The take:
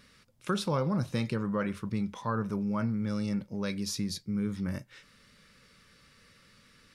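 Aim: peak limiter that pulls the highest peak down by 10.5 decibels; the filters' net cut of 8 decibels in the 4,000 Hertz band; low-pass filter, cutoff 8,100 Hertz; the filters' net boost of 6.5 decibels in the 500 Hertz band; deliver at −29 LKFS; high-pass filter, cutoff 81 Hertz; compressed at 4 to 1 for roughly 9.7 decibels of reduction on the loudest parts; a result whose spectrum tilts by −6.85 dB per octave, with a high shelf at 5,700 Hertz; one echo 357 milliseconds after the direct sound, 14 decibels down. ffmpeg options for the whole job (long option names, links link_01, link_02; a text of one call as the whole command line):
ffmpeg -i in.wav -af "highpass=81,lowpass=8100,equalizer=frequency=500:width_type=o:gain=7.5,equalizer=frequency=4000:width_type=o:gain=-8.5,highshelf=frequency=5700:gain=-3,acompressor=threshold=-33dB:ratio=4,alimiter=level_in=6.5dB:limit=-24dB:level=0:latency=1,volume=-6.5dB,aecho=1:1:357:0.2,volume=11dB" out.wav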